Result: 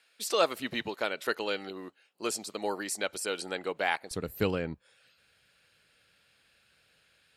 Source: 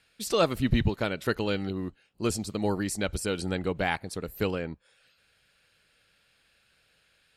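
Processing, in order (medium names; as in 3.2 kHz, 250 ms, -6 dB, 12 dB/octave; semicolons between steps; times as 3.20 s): high-pass 470 Hz 12 dB/octave, from 4.11 s 62 Hz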